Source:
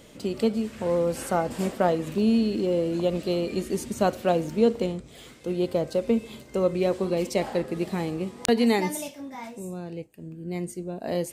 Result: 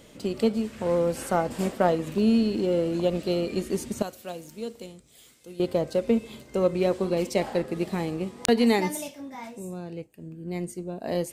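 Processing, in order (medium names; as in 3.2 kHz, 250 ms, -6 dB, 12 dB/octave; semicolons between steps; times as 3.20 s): 4.02–5.60 s: pre-emphasis filter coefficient 0.8; in parallel at -12 dB: crossover distortion -28.5 dBFS; on the sum: trim -1 dB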